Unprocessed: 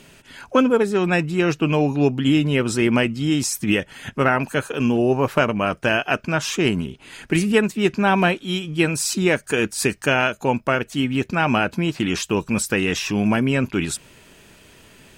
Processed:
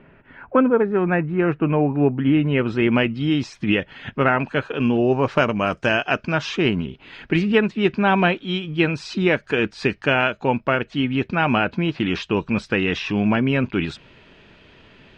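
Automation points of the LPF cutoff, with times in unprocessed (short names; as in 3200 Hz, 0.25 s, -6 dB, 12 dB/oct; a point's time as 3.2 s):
LPF 24 dB/oct
2.09 s 2000 Hz
3.02 s 3800 Hz
4.82 s 3800 Hz
5.7 s 7300 Hz
6.69 s 4000 Hz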